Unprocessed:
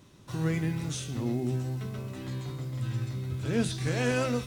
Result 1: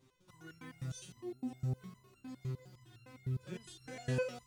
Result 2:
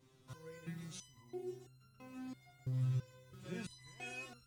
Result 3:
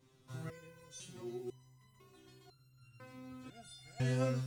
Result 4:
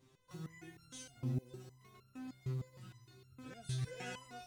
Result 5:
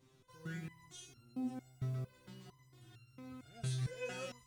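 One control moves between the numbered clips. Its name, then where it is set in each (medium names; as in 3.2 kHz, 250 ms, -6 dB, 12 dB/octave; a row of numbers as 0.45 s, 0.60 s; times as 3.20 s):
resonator arpeggio, rate: 9.8 Hz, 3 Hz, 2 Hz, 6.5 Hz, 4.4 Hz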